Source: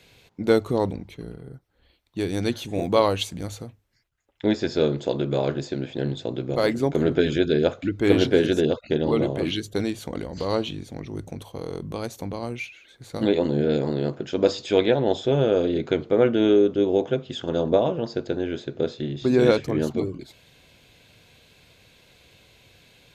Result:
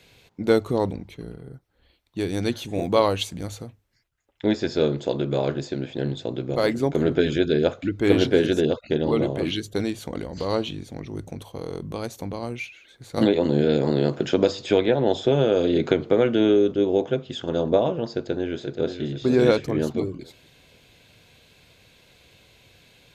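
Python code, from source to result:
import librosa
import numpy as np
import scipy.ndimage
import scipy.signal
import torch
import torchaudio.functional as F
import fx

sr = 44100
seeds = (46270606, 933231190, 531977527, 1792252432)

y = fx.band_squash(x, sr, depth_pct=100, at=(13.17, 16.72))
y = fx.echo_throw(y, sr, start_s=18.12, length_s=0.9, ms=480, feedback_pct=30, wet_db=-8.0)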